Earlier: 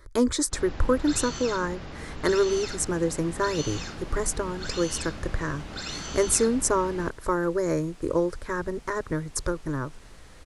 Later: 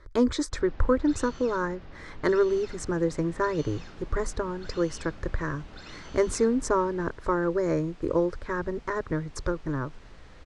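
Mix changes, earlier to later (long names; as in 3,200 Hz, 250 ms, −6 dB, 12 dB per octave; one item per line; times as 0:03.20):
first sound −9.0 dB
master: add high-frequency loss of the air 120 metres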